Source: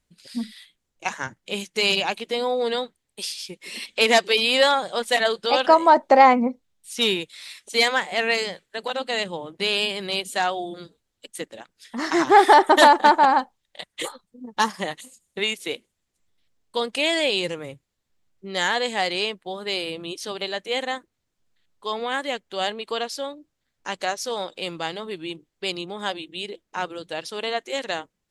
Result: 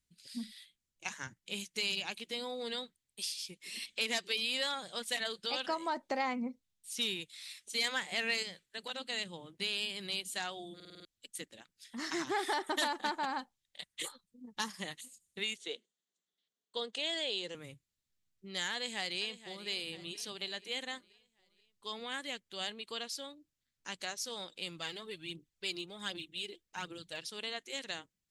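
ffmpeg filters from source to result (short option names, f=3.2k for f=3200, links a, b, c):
-filter_complex "[0:a]asettb=1/sr,asplit=3[a][b][c];[a]atrim=end=7.844[d];[b]atrim=start=7.84:end=8.43,asetpts=PTS-STARTPTS,afade=t=in:d=0.004:c=qsin,afade=t=out:st=0.586:d=0.004:c=qsin,acontrast=24[e];[c]atrim=start=8.426[f];[d][e]acrossfade=d=0.004:c1=hsin:c2=qsin[g];[g][f]acrossfade=d=0.004:c1=qsin:c2=hsin,asettb=1/sr,asplit=3[h][i][j];[h]atrim=end=15.564[k];[i]atrim=start=15.56:end=17.55,asetpts=PTS-STARTPTS,afade=t=in:d=0.004:c=qsin,afade=t=out:st=1.986:d=0.004:c=qsin,highpass=f=210:w=0.5412,highpass=f=210:w=1.3066,equalizer=f=280:t=q:w=4:g=-6,equalizer=f=440:t=q:w=4:g=6,equalizer=f=680:t=q:w=4:g=4,equalizer=f=2.4k:t=q:w=4:g=-8,equalizer=f=3.4k:t=q:w=4:g=3,equalizer=f=5.2k:t=q:w=4:g=-7,lowpass=f=7.1k:w=0.5412,lowpass=f=7.1k:w=1.3066[l];[j]atrim=start=17.546[m];[k][l]acrossfade=d=0.004:c1=hsin:c2=qsin[n];[n][m]acrossfade=d=0.004:c1=qsin:c2=hsin,asplit=2[o][p];[p]afade=t=in:st=18.73:d=0.01,afade=t=out:st=19.68:d=0.01,aecho=0:1:480|960|1440|1920|2400:0.188365|0.0941825|0.0470912|0.0235456|0.0117728[q];[o][q]amix=inputs=2:normalize=0,asplit=3[r][s][t];[r]afade=t=out:st=24.77:d=0.02[u];[s]aphaser=in_gain=1:out_gain=1:delay=3:decay=0.5:speed=1.3:type=triangular,afade=t=in:st=24.77:d=0.02,afade=t=out:st=27.18:d=0.02[v];[t]afade=t=in:st=27.18:d=0.02[w];[u][v][w]amix=inputs=3:normalize=0,asplit=7[x][y][z][aa][ab][ac][ad];[x]atrim=end=10.802[ae];[y]atrim=start=10.748:end=10.802[af];[z]atrim=start=10.748:end=10.802[ag];[aa]atrim=start=10.748:end=10.802[ah];[ab]atrim=start=10.748:end=10.802[ai];[ac]atrim=start=10.748:end=10.802[aj];[ad]atrim=start=11.048[ak];[ae][af]acrossfade=d=0.004:c1=hsin:c2=hsin[al];[al][ag]acrossfade=d=0.004:c1=hsin:c2=hsin[am];[am][ah]acrossfade=d=0.004:c1=hsin:c2=hsin[an];[an][ai]acrossfade=d=0.004:c1=hsin:c2=hsin[ao];[ao][aj]acrossfade=d=0.004:c1=hsin:c2=hsin[ap];[ap][ak]acrossfade=d=0.004:c1=hsin:c2=hsin,equalizer=f=670:w=0.46:g=-13,acompressor=threshold=-28dB:ratio=2,lowshelf=f=66:g=-8,volume=-5.5dB"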